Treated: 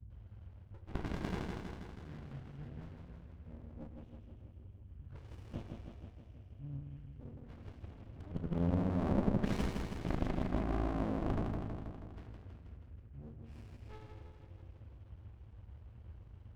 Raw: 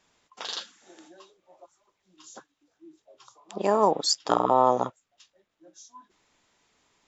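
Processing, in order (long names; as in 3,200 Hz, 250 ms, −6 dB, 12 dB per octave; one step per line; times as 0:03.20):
noise gate with hold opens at −59 dBFS
high-shelf EQ 2,400 Hz −11.5 dB
reversed playback
downward compressor 8 to 1, threshold −31 dBFS, peak gain reduction 15.5 dB
reversed playback
tuned comb filter 66 Hz, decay 0.42 s, harmonics all, mix 60%
on a send: flutter between parallel walls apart 11.8 metres, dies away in 1.1 s
on the sum: noise in a band 110–260 Hz −61 dBFS
wrong playback speed 78 rpm record played at 33 rpm
windowed peak hold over 65 samples
level +9 dB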